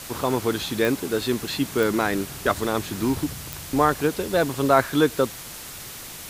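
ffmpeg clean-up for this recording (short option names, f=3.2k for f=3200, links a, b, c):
-af "adeclick=t=4,afwtdn=0.014"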